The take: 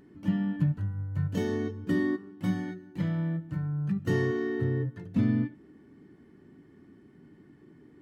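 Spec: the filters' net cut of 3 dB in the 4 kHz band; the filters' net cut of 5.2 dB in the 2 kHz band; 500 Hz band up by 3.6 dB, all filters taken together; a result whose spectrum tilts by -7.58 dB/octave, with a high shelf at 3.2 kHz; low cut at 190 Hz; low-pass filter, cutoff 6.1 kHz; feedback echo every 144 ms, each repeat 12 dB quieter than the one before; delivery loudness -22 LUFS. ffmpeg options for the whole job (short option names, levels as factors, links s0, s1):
-af "highpass=190,lowpass=6100,equalizer=f=500:t=o:g=5.5,equalizer=f=2000:t=o:g=-7,highshelf=f=3200:g=8,equalizer=f=4000:t=o:g=-6.5,aecho=1:1:144|288|432:0.251|0.0628|0.0157,volume=2.99"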